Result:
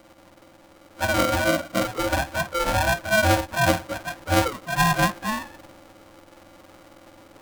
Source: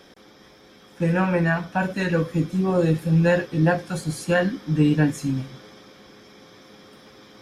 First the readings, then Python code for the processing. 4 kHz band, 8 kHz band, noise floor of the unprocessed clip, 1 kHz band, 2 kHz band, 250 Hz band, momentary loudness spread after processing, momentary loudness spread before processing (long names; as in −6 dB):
+9.0 dB, +9.0 dB, −51 dBFS, +6.5 dB, +4.5 dB, −7.0 dB, 9 LU, 8 LU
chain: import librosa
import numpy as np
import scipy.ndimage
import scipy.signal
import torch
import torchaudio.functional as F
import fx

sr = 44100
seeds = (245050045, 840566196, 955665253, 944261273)

y = fx.octave_mirror(x, sr, pivot_hz=420.0)
y = y * np.sign(np.sin(2.0 * np.pi * 430.0 * np.arange(len(y)) / sr))